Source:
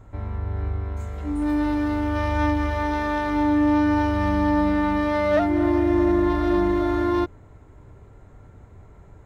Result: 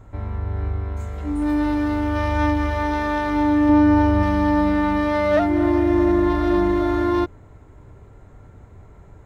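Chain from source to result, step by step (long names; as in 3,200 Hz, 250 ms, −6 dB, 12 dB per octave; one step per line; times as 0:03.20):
0:03.69–0:04.23: tilt shelving filter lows +4 dB, about 1,200 Hz
level +2 dB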